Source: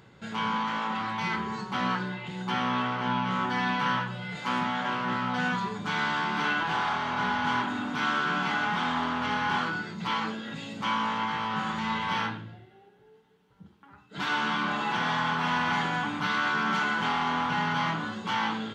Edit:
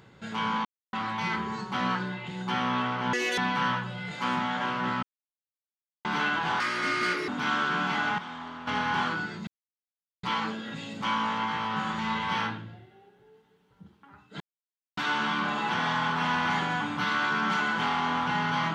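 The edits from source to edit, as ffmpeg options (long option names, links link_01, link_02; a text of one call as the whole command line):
ffmpeg -i in.wav -filter_complex "[0:a]asplit=13[link_01][link_02][link_03][link_04][link_05][link_06][link_07][link_08][link_09][link_10][link_11][link_12][link_13];[link_01]atrim=end=0.65,asetpts=PTS-STARTPTS,afade=type=out:start_time=0.646:duration=0.004:curve=hsin[link_14];[link_02]atrim=start=0.65:end=0.93,asetpts=PTS-STARTPTS,volume=0[link_15];[link_03]atrim=start=0.93:end=3.134,asetpts=PTS-STARTPTS,afade=type=in:duration=0.004:curve=hsin[link_16];[link_04]atrim=start=3.13:end=3.62,asetpts=PTS-STARTPTS,asetrate=87318,aresample=44100[link_17];[link_05]atrim=start=3.616:end=5.27,asetpts=PTS-STARTPTS,afade=type=out:start_time=1.65:duration=0.004:curve=hsin[link_18];[link_06]atrim=start=5.27:end=6.29,asetpts=PTS-STARTPTS,volume=0[link_19];[link_07]atrim=start=6.29:end=6.844,asetpts=PTS-STARTPTS,afade=type=in:duration=0.004:curve=hsin[link_20];[link_08]atrim=start=6.84:end=7.84,asetpts=PTS-STARTPTS,asetrate=64386,aresample=44100,atrim=end_sample=30205,asetpts=PTS-STARTPTS[link_21];[link_09]atrim=start=7.836:end=8.742[link_22];[link_10]atrim=start=8.738:end=9.232,asetpts=PTS-STARTPTS,volume=-11dB[link_23];[link_11]atrim=start=9.228:end=10.03,asetpts=PTS-STARTPTS,afade=type=out:start_time=0.798:duration=0.004:curve=hsin,apad=pad_dur=0.76[link_24];[link_12]atrim=start=10.03:end=14.2,asetpts=PTS-STARTPTS,afade=type=in:duration=0.004:curve=hsin,afade=type=out:start_time=4.166:duration=0.004:curve=hsin,apad=pad_dur=0.57[link_25];[link_13]atrim=start=14.2,asetpts=PTS-STARTPTS,afade=type=in:duration=0.004:curve=hsin[link_26];[link_14][link_15][link_16]concat=n=3:v=0:a=1[link_27];[link_27][link_17]acrossfade=duration=0.004:curve1=hsin:curve2=hsin[link_28];[link_18][link_19][link_20]concat=n=3:v=0:a=1[link_29];[link_28][link_29]acrossfade=duration=0.004:curve1=hsin:curve2=hsin[link_30];[link_30][link_21]acrossfade=duration=0.004:curve1=hsin:curve2=hsin[link_31];[link_31][link_22]acrossfade=duration=0.004:curve1=hsin:curve2=hsin[link_32];[link_32][link_23]acrossfade=duration=0.004:curve1=hsin:curve2=hsin[link_33];[link_24][link_25][link_26]concat=n=3:v=0:a=1[link_34];[link_33][link_34]acrossfade=duration=0.004:curve1=hsin:curve2=hsin" out.wav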